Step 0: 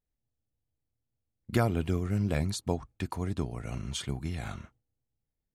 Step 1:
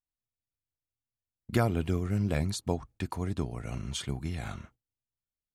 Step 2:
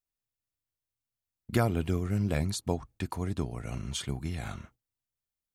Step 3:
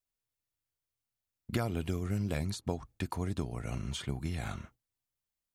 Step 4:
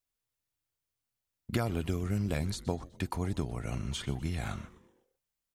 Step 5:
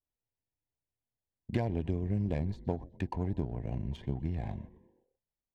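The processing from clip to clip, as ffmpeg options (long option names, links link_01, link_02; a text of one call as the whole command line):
ffmpeg -i in.wav -af "agate=range=-13dB:threshold=-55dB:ratio=16:detection=peak" out.wav
ffmpeg -i in.wav -af "highshelf=frequency=10000:gain=4.5" out.wav
ffmpeg -i in.wav -filter_complex "[0:a]acrossover=split=2800|7400[link_01][link_02][link_03];[link_01]acompressor=threshold=-29dB:ratio=4[link_04];[link_02]acompressor=threshold=-45dB:ratio=4[link_05];[link_03]acompressor=threshold=-52dB:ratio=4[link_06];[link_04][link_05][link_06]amix=inputs=3:normalize=0" out.wav
ffmpeg -i in.wav -filter_complex "[0:a]asplit=5[link_01][link_02][link_03][link_04][link_05];[link_02]adelay=125,afreqshift=-150,volume=-18dB[link_06];[link_03]adelay=250,afreqshift=-300,volume=-24.7dB[link_07];[link_04]adelay=375,afreqshift=-450,volume=-31.5dB[link_08];[link_05]adelay=500,afreqshift=-600,volume=-38.2dB[link_09];[link_01][link_06][link_07][link_08][link_09]amix=inputs=5:normalize=0,volume=1.5dB" out.wav
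ffmpeg -i in.wav -af "adynamicequalizer=threshold=0.00178:dfrequency=2100:dqfactor=1:tfrequency=2100:tqfactor=1:attack=5:release=100:ratio=0.375:range=2:mode=cutabove:tftype=bell,asuperstop=centerf=1300:order=8:qfactor=2.3,adynamicsmooth=sensitivity=3:basefreq=1200" out.wav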